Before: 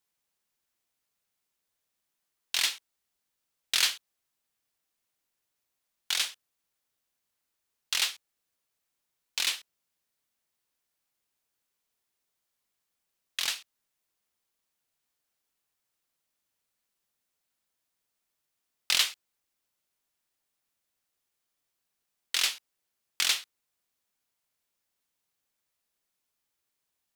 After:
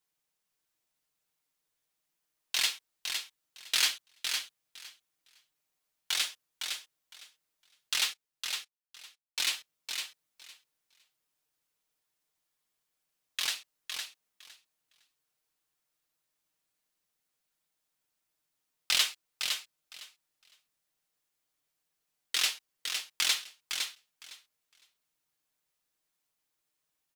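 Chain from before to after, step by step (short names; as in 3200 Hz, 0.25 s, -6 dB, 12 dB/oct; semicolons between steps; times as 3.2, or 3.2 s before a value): 8.13–9.54 gate -38 dBFS, range -22 dB; comb 6.5 ms, depth 53%; feedback echo 0.509 s, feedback 16%, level -6 dB; gain -2.5 dB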